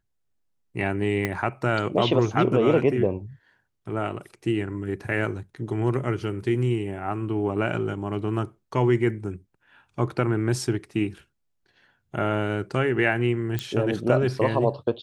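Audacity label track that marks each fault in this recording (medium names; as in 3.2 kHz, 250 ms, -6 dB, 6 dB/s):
1.250000	1.250000	pop -11 dBFS
13.590000	13.590000	pop -12 dBFS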